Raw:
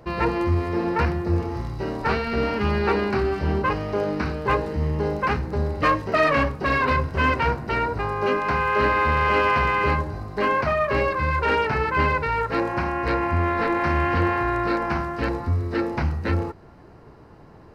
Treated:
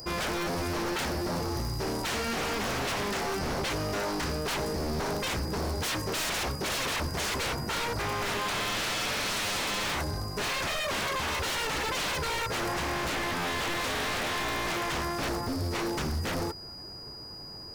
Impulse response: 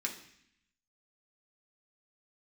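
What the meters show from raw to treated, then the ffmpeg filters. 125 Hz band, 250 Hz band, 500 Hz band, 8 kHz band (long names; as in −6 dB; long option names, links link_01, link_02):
−10.0 dB, −8.5 dB, −9.5 dB, can't be measured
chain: -af "aeval=exprs='val(0)+0.00355*sin(2*PI*4900*n/s)':channel_layout=same,aexciter=amount=7.9:drive=4.9:freq=5400,aeval=exprs='0.0596*(abs(mod(val(0)/0.0596+3,4)-2)-1)':channel_layout=same,volume=-1.5dB"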